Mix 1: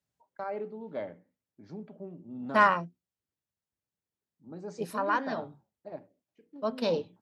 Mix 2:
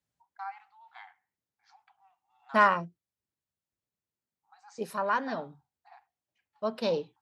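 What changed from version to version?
first voice: add linear-phase brick-wall high-pass 700 Hz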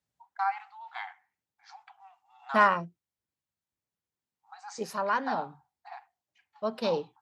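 first voice +10.5 dB

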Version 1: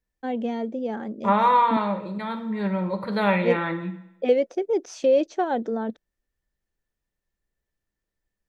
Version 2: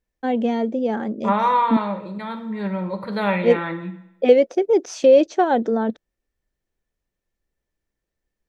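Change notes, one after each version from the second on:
first voice +6.5 dB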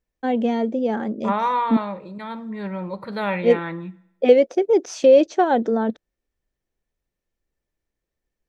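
second voice: send −11.5 dB

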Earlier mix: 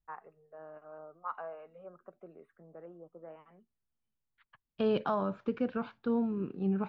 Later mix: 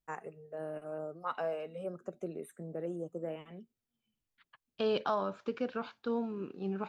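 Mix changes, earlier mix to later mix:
first voice: remove resonant band-pass 1,100 Hz, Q 2
master: add bass and treble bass −10 dB, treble +14 dB

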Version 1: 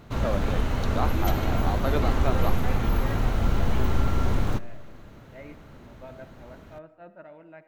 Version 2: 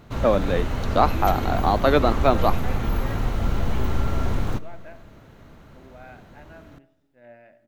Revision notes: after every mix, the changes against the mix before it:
first voice +11.0 dB
second voice: entry +2.75 s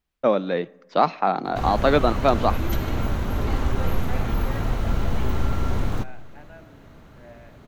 background: entry +1.45 s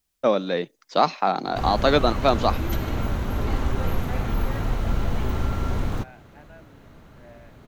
first voice: add bass and treble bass −1 dB, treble +14 dB
reverb: off

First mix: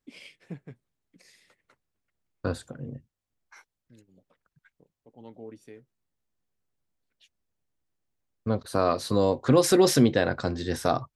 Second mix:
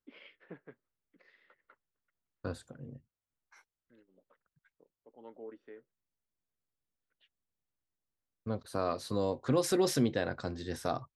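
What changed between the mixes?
first voice: add loudspeaker in its box 390–2,700 Hz, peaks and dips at 740 Hz −5 dB, 1,400 Hz +4 dB, 2,400 Hz −9 dB
second voice −9.0 dB

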